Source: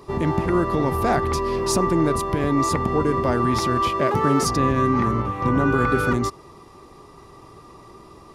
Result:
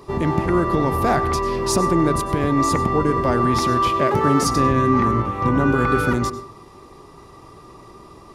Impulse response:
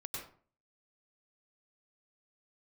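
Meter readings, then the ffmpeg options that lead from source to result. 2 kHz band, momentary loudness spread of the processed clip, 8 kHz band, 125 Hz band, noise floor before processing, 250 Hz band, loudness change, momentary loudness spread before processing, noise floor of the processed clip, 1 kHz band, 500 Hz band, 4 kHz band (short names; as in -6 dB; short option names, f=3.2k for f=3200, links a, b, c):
+1.5 dB, 4 LU, +1.5 dB, +2.0 dB, -46 dBFS, +2.0 dB, +2.0 dB, 4 LU, -45 dBFS, +2.5 dB, +1.5 dB, +1.5 dB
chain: -filter_complex "[0:a]asplit=2[a][b];[1:a]atrim=start_sample=2205[c];[b][c]afir=irnorm=-1:irlink=0,volume=-8.5dB[d];[a][d]amix=inputs=2:normalize=0"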